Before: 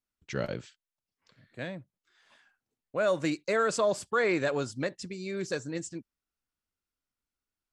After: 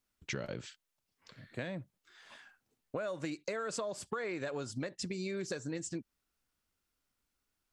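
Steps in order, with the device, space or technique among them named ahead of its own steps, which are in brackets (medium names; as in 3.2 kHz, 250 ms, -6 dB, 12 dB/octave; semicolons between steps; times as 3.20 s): serial compression, peaks first (compression, threshold -37 dBFS, peak gain reduction 13.5 dB; compression 2.5:1, threshold -44 dBFS, peak gain reduction 7 dB); trim +7 dB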